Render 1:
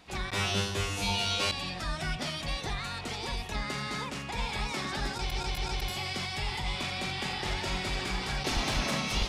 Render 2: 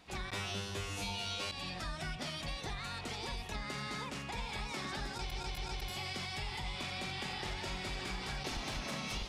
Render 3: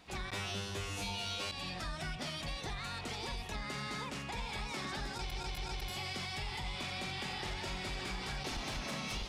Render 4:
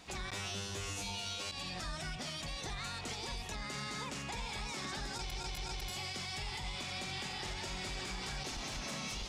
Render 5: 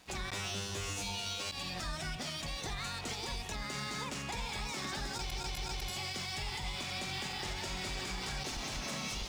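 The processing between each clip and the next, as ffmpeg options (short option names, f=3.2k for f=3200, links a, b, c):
-af "acompressor=threshold=-32dB:ratio=6,volume=-4dB"
-af "asoftclip=type=tanh:threshold=-30.5dB,volume=1dB"
-af "equalizer=f=6.9k:t=o:w=0.96:g=7,alimiter=level_in=11.5dB:limit=-24dB:level=0:latency=1:release=214,volume=-11.5dB,volume=3dB"
-af "aeval=exprs='sgn(val(0))*max(abs(val(0))-0.00112,0)':c=same,aeval=exprs='0.0237*(cos(1*acos(clip(val(0)/0.0237,-1,1)))-cos(1*PI/2))+0.000473*(cos(7*acos(clip(val(0)/0.0237,-1,1)))-cos(7*PI/2))':c=same,volume=3dB"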